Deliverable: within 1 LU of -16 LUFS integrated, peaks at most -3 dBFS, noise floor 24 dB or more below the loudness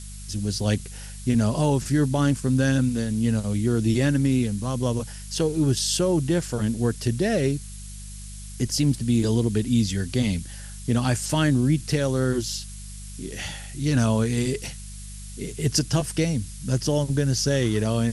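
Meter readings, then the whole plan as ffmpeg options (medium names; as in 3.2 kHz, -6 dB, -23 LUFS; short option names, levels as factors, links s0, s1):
hum 50 Hz; highest harmonic 200 Hz; hum level -36 dBFS; noise floor -38 dBFS; noise floor target -48 dBFS; loudness -24.0 LUFS; peak level -8.0 dBFS; loudness target -16.0 LUFS
-> -af "bandreject=f=50:t=h:w=4,bandreject=f=100:t=h:w=4,bandreject=f=150:t=h:w=4,bandreject=f=200:t=h:w=4"
-af "afftdn=nr=10:nf=-38"
-af "volume=2.51,alimiter=limit=0.708:level=0:latency=1"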